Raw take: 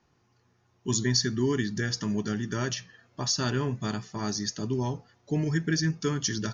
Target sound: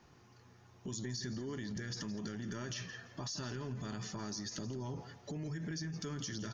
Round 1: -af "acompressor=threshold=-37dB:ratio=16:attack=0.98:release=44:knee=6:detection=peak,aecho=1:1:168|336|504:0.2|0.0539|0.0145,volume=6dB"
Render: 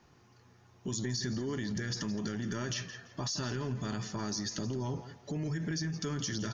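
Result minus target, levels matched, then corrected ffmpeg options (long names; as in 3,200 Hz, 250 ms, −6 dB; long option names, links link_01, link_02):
downward compressor: peak gain reduction −6 dB
-af "acompressor=threshold=-43.5dB:ratio=16:attack=0.98:release=44:knee=6:detection=peak,aecho=1:1:168|336|504:0.2|0.0539|0.0145,volume=6dB"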